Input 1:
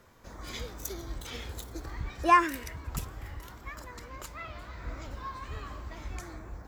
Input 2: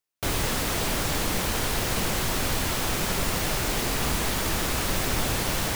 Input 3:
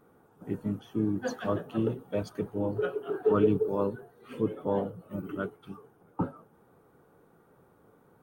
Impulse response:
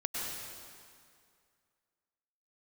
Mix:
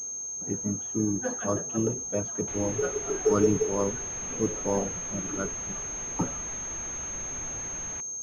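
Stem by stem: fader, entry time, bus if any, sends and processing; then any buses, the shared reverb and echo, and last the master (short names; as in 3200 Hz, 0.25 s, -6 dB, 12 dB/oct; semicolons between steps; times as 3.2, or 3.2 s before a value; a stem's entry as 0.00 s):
-18.0 dB, 0.00 s, no send, comb 1.4 ms, depth 93%; sample-and-hold 19×; auto duck -12 dB, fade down 0.30 s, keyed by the third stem
-15.5 dB, 2.25 s, no send, dry
+1.0 dB, 0.00 s, no send, dry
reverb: off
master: pulse-width modulation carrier 6400 Hz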